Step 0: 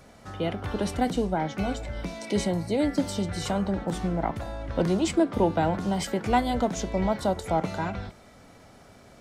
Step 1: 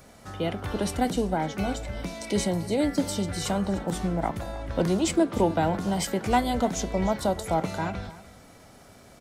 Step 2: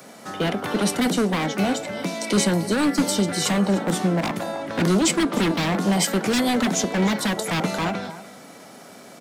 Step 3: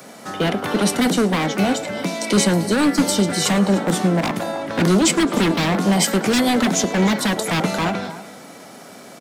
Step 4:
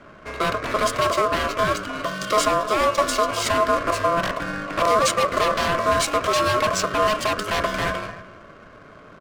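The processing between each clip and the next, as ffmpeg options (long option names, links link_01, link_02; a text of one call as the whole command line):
ffmpeg -i in.wav -af "highshelf=frequency=7900:gain=9.5,aecho=1:1:302:0.133" out.wav
ffmpeg -i in.wav -filter_complex "[0:a]highpass=frequency=170:width=0.5412,highpass=frequency=170:width=1.3066,acrossover=split=300|2900[link_01][link_02][link_03];[link_02]aeval=exprs='0.0355*(abs(mod(val(0)/0.0355+3,4)-2)-1)':channel_layout=same[link_04];[link_01][link_04][link_03]amix=inputs=3:normalize=0,volume=8.5dB" out.wav
ffmpeg -i in.wav -filter_complex "[0:a]asplit=6[link_01][link_02][link_03][link_04][link_05][link_06];[link_02]adelay=107,afreqshift=33,volume=-21.5dB[link_07];[link_03]adelay=214,afreqshift=66,volume=-25.8dB[link_08];[link_04]adelay=321,afreqshift=99,volume=-30.1dB[link_09];[link_05]adelay=428,afreqshift=132,volume=-34.4dB[link_10];[link_06]adelay=535,afreqshift=165,volume=-38.7dB[link_11];[link_01][link_07][link_08][link_09][link_10][link_11]amix=inputs=6:normalize=0,volume=3.5dB" out.wav
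ffmpeg -i in.wav -af "aeval=exprs='val(0)*sin(2*PI*850*n/s)':channel_layout=same,adynamicsmooth=sensitivity=7:basefreq=1300" out.wav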